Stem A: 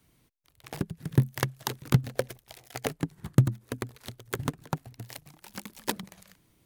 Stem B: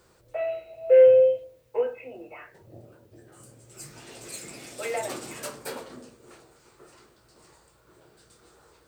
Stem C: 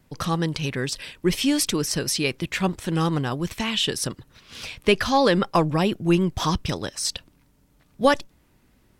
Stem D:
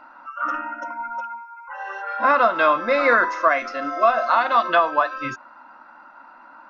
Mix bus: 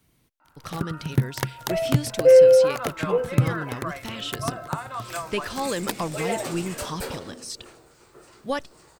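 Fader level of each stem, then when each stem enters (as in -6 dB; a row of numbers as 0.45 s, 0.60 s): +1.0 dB, +2.5 dB, -9.5 dB, -16.0 dB; 0.00 s, 1.35 s, 0.45 s, 0.40 s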